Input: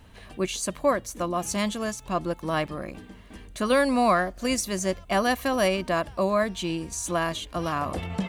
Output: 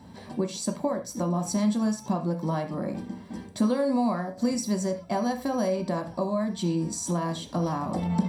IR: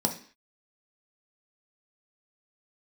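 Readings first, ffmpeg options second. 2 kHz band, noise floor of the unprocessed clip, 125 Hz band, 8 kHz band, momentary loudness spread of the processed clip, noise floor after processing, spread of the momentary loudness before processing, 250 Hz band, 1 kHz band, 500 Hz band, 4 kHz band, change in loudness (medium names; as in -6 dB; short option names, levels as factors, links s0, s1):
-12.5 dB, -48 dBFS, +4.0 dB, -3.5 dB, 7 LU, -45 dBFS, 9 LU, +3.0 dB, -5.0 dB, -3.5 dB, -6.5 dB, -2.0 dB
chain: -filter_complex "[0:a]acompressor=threshold=0.0282:ratio=6[s0];[1:a]atrim=start_sample=2205,afade=t=out:st=0.17:d=0.01,atrim=end_sample=7938[s1];[s0][s1]afir=irnorm=-1:irlink=0,volume=0.473"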